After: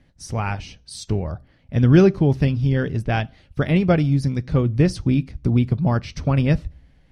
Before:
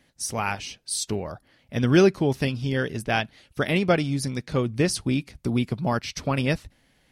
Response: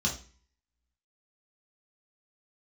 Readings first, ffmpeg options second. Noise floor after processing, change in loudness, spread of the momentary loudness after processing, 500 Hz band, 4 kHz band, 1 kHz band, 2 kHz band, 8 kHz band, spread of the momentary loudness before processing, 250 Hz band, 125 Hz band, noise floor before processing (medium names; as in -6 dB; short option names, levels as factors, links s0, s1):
-56 dBFS, +5.0 dB, 14 LU, +1.5 dB, -4.5 dB, 0.0 dB, -2.0 dB, no reading, 10 LU, +5.0 dB, +9.0 dB, -64 dBFS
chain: -filter_complex "[0:a]aemphasis=mode=reproduction:type=bsi,asplit=2[s0][s1];[1:a]atrim=start_sample=2205[s2];[s1][s2]afir=irnorm=-1:irlink=0,volume=0.0501[s3];[s0][s3]amix=inputs=2:normalize=0"